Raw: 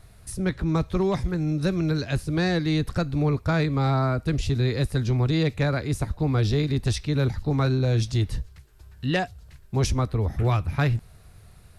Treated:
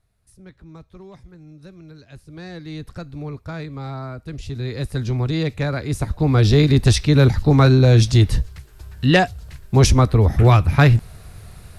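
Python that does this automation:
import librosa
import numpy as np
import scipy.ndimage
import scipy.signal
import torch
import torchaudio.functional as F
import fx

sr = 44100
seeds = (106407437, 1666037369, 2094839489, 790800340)

y = fx.gain(x, sr, db=fx.line((1.97, -18.0), (2.82, -8.0), (4.28, -8.0), (5.01, 1.0), (5.73, 1.0), (6.64, 10.0)))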